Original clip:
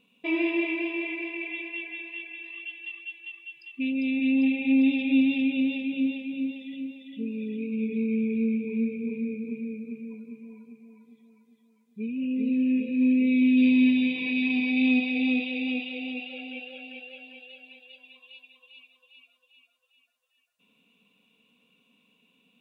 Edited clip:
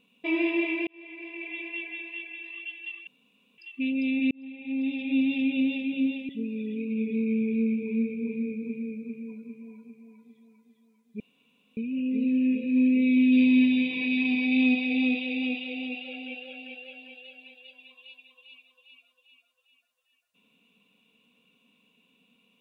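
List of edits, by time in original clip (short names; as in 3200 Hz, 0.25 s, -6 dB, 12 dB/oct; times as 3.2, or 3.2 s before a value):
0.87–1.72 fade in
3.07–3.58 room tone
4.31–5.58 fade in
6.29–7.11 cut
12.02 insert room tone 0.57 s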